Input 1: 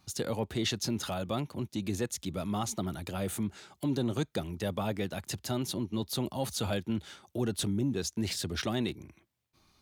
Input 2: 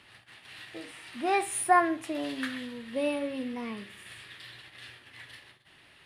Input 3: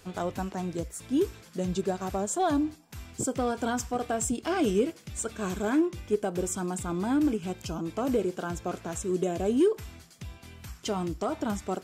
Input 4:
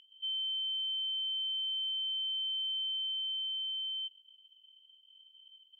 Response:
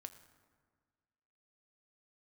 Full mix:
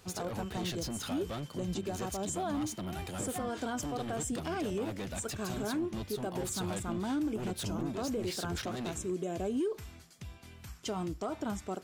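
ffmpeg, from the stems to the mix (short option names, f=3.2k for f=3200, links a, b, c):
-filter_complex "[0:a]asoftclip=type=tanh:threshold=-34.5dB,volume=0dB[a];[1:a]adelay=1650,volume=-19.5dB[b];[2:a]volume=-4.5dB[c];[3:a]acompressor=threshold=-42dB:ratio=6,adelay=200,volume=-17dB[d];[a][b][c][d]amix=inputs=4:normalize=0,alimiter=level_in=2.5dB:limit=-24dB:level=0:latency=1:release=85,volume=-2.5dB"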